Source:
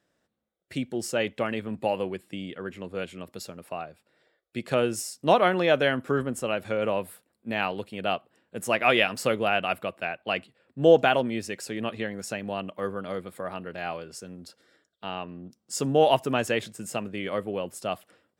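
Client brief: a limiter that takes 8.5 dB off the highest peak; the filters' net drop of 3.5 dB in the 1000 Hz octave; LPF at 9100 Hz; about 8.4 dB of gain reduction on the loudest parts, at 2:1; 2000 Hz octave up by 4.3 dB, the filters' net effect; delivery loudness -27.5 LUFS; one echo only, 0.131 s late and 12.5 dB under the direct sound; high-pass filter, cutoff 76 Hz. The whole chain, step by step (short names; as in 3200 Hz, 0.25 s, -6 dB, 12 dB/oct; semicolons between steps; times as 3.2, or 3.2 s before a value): HPF 76 Hz; LPF 9100 Hz; bell 1000 Hz -7.5 dB; bell 2000 Hz +8 dB; compressor 2:1, threshold -28 dBFS; limiter -19 dBFS; echo 0.131 s -12.5 dB; gain +6 dB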